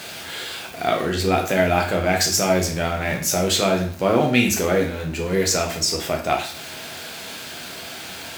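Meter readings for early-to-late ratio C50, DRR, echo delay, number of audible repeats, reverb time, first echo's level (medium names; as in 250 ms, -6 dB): 8.0 dB, 1.0 dB, no echo, no echo, 0.50 s, no echo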